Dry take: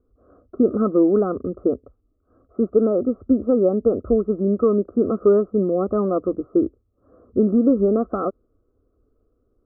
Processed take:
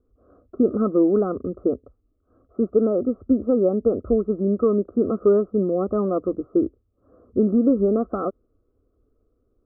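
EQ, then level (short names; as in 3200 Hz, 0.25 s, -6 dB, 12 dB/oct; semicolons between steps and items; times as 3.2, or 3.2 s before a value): air absorption 270 m; -1.0 dB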